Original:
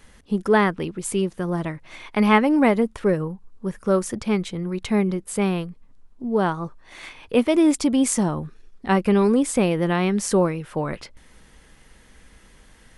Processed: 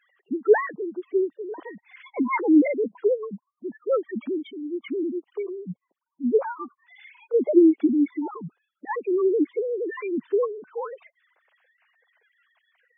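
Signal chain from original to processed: formants replaced by sine waves; spectral gate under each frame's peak -10 dB strong; trim -2.5 dB

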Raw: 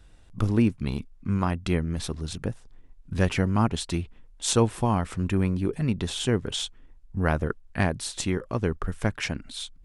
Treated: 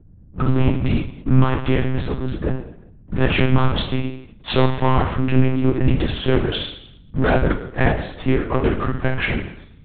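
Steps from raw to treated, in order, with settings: level-controlled noise filter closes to 640 Hz, open at -18 dBFS; bass shelf 70 Hz -9.5 dB; waveshaping leveller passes 3; mains buzz 60 Hz, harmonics 5, -49 dBFS -4 dB/octave; reverberation RT60 0.70 s, pre-delay 5 ms, DRR 1.5 dB; monotone LPC vocoder at 8 kHz 130 Hz; trim -1 dB

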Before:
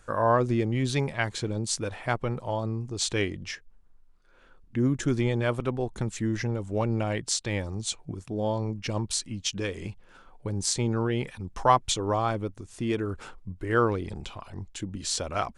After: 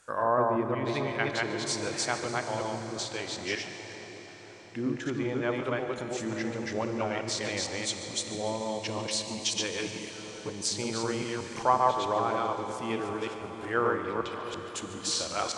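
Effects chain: chunks repeated in reverse 187 ms, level -1 dB; low-pass that closes with the level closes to 1.4 kHz, closed at -17.5 dBFS; high-pass 400 Hz 6 dB/octave; treble shelf 4.8 kHz +7 dB; 2.84–3.37 s: compression, threshold -30 dBFS, peak gain reduction 7.5 dB; 9.79–10.50 s: comb 6.7 ms, depth 92%; two-band feedback delay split 1.2 kHz, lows 644 ms, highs 145 ms, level -15 dB; reverberation RT60 5.3 s, pre-delay 28 ms, DRR 7 dB; trim -2.5 dB

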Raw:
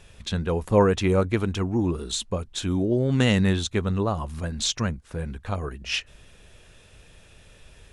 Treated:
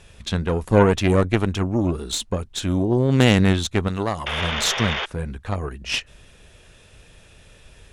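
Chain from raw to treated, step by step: 4.26–5.06 s: painted sound noise 370–3700 Hz -29 dBFS; Chebyshev shaper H 4 -13 dB, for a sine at -5 dBFS; 3.88–4.28 s: tilt EQ +2 dB/octave; trim +2.5 dB

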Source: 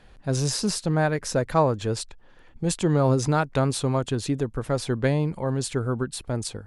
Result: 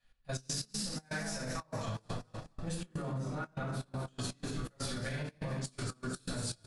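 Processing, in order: 1.95–4.03 s: peaking EQ 7 kHz -13.5 dB 2.5 oct; frequency-shifting echo 227 ms, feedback 46%, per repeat +51 Hz, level -8.5 dB; simulated room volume 440 m³, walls mixed, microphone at 6.1 m; peak limiter -7.5 dBFS, peak gain reduction 12.5 dB; trance gate "x.x.x.xx.xxxx.x" 122 bpm -12 dB; amplifier tone stack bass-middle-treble 5-5-5; compression 6:1, threshold -35 dBFS, peak gain reduction 10 dB; gate -38 dBFS, range -19 dB; trim +1 dB

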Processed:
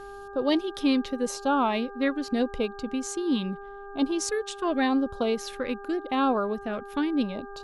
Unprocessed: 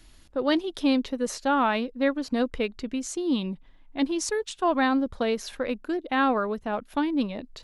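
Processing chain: LFO notch sine 0.83 Hz 710–2000 Hz; mains buzz 400 Hz, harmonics 4, -42 dBFS -4 dB/octave

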